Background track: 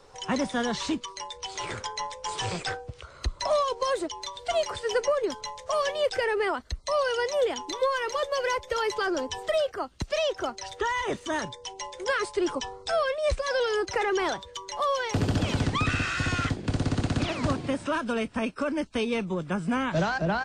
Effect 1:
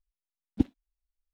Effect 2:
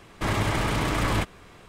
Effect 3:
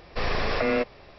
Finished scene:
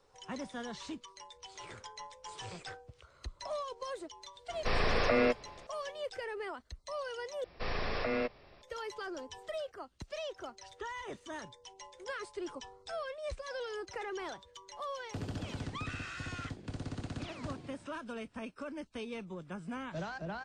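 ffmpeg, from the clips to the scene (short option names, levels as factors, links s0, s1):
-filter_complex "[3:a]asplit=2[s0][s1];[0:a]volume=0.2,asplit=2[s2][s3];[s2]atrim=end=7.444[s4];[s1]atrim=end=1.18,asetpts=PTS-STARTPTS,volume=0.355[s5];[s3]atrim=start=8.616[s6];[s0]atrim=end=1.18,asetpts=PTS-STARTPTS,volume=0.668,afade=t=in:d=0.004:c=hsin,afade=t=out:st=1.176:d=0.004:c=hsin,adelay=198009S[s7];[s4][s5]acrossfade=d=0.004:c1=hsin:c2=hsin[s8];[s8][s6]acrossfade=d=0.004:c1=hsin:c2=hsin[s9];[s9][s7]amix=inputs=2:normalize=0"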